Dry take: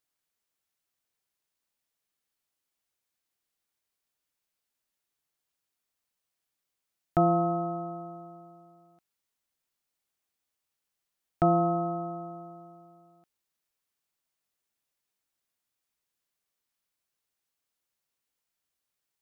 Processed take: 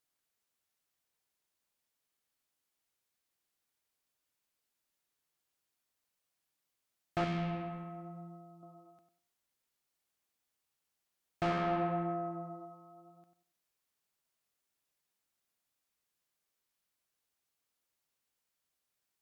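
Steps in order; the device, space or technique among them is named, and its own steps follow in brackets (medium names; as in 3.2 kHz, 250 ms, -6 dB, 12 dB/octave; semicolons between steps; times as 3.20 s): rockabilly slapback (valve stage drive 29 dB, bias 0.25; tape echo 96 ms, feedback 32%, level -6.5 dB, low-pass 1.4 kHz); 7.24–8.63 s: high-order bell 720 Hz -8.5 dB 2.8 oct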